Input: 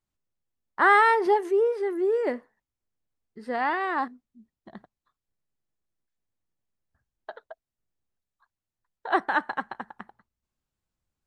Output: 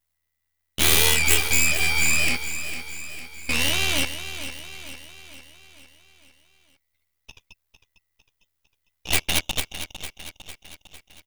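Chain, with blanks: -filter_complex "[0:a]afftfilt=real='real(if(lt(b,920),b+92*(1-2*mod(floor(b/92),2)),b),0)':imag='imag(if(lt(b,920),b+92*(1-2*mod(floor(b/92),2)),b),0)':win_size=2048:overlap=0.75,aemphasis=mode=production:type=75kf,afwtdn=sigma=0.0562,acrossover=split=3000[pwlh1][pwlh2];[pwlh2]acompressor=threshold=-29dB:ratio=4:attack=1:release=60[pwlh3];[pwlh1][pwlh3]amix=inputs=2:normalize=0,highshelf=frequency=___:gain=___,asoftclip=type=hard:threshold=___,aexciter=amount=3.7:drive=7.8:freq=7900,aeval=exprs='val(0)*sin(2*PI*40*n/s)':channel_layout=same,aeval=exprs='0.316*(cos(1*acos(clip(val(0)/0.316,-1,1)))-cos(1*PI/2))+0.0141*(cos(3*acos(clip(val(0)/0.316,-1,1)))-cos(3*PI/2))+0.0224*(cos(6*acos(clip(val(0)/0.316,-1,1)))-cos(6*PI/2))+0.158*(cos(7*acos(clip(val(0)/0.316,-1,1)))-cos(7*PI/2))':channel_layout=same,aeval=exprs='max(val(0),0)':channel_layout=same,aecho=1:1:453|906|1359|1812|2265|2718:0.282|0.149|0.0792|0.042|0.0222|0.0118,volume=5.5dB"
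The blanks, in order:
6800, -8, -17dB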